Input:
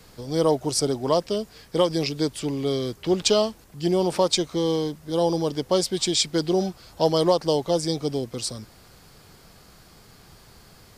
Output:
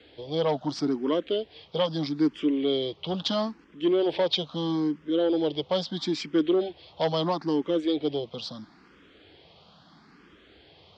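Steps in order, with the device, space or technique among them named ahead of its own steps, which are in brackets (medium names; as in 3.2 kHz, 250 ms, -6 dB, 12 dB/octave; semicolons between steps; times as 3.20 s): barber-pole phaser into a guitar amplifier (barber-pole phaser +0.76 Hz; saturation -18 dBFS, distortion -16 dB; cabinet simulation 100–4000 Hz, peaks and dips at 120 Hz -9 dB, 300 Hz +7 dB, 3.3 kHz +8 dB)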